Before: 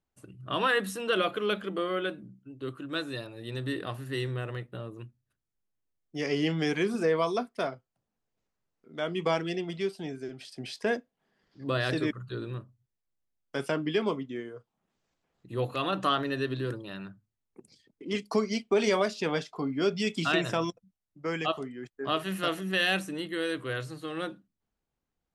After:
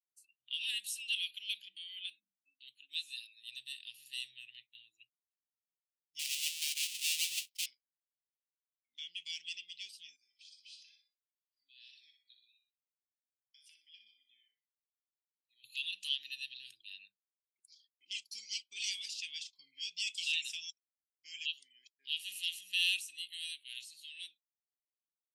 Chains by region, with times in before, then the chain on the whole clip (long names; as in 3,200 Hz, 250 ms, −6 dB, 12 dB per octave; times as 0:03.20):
0:06.19–0:07.66: each half-wave held at its own peak + high-pass filter 250 Hz + high-shelf EQ 5,000 Hz −3.5 dB
0:10.16–0:15.64: downward compressor 2.5 to 1, threshold −40 dBFS + tuned comb filter 220 Hz, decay 0.42 s, mix 70% + repeating echo 61 ms, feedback 51%, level −7 dB
whole clip: noise reduction from a noise print of the clip's start 20 dB; elliptic high-pass filter 2,700 Hz, stop band 50 dB; dynamic equaliser 8,600 Hz, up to +3 dB, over −56 dBFS, Q 1.8